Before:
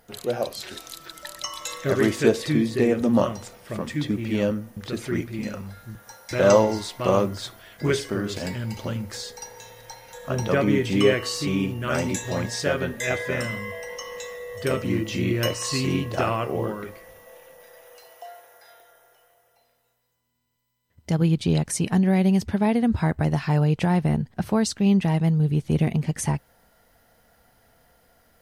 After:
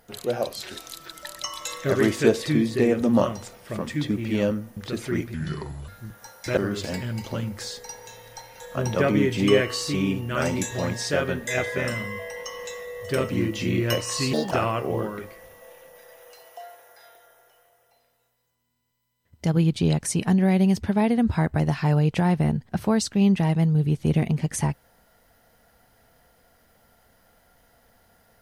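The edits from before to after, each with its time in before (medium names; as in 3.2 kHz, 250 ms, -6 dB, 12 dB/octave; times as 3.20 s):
5.34–5.73 s: speed 72%
6.42–8.10 s: delete
15.86–16.16 s: speed 167%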